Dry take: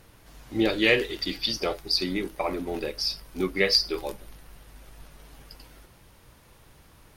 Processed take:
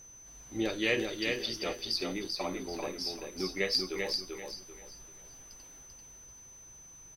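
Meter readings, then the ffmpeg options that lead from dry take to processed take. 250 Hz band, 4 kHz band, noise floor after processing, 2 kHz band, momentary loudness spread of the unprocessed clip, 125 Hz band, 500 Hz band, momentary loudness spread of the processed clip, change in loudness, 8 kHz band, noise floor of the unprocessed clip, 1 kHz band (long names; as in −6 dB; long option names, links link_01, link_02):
−7.0 dB, −7.0 dB, −53 dBFS, −7.0 dB, 11 LU, −7.5 dB, −7.0 dB, 20 LU, −7.5 dB, +0.5 dB, −55 dBFS, −7.0 dB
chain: -af "aecho=1:1:390|780|1170|1560:0.631|0.177|0.0495|0.0139,aeval=exprs='val(0)+0.00794*sin(2*PI*6100*n/s)':channel_layout=same,volume=-8.5dB"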